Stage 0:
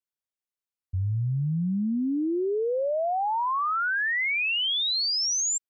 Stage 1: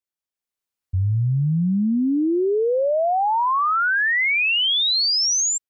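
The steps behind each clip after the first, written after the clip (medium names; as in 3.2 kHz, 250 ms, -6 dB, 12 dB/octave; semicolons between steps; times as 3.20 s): level rider gain up to 6.5 dB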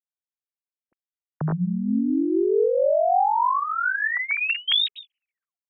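formants replaced by sine waves; peak limiter -12.5 dBFS, peak gain reduction 4 dB; random flutter of the level, depth 55%; trim +1 dB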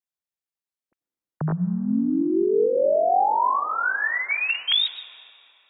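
reverberation RT60 3.3 s, pre-delay 83 ms, DRR 16 dB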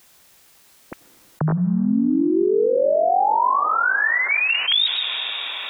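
level flattener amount 70%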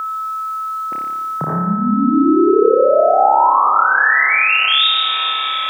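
flutter echo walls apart 5 m, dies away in 1.1 s; whistle 1.3 kHz -20 dBFS; high-pass 140 Hz 12 dB/octave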